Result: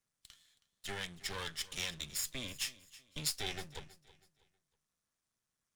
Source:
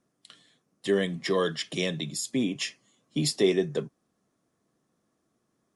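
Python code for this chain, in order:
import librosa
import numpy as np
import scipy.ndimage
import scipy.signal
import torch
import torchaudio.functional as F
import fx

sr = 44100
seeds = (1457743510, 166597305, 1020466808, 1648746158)

p1 = np.maximum(x, 0.0)
p2 = fx.low_shelf_res(p1, sr, hz=440.0, db=-10.0, q=1.5)
p3 = fx.rider(p2, sr, range_db=10, speed_s=0.5)
p4 = p2 + (p3 * librosa.db_to_amplitude(-1.0))
p5 = fx.tone_stack(p4, sr, knobs='6-0-2')
p6 = fx.echo_feedback(p5, sr, ms=321, feedback_pct=33, wet_db=-19.0)
y = p6 * librosa.db_to_amplitude(9.0)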